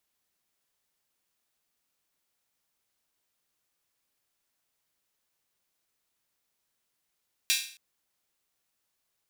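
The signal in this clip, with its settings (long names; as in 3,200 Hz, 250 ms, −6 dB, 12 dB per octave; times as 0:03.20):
open synth hi-hat length 0.27 s, high-pass 2,800 Hz, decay 0.47 s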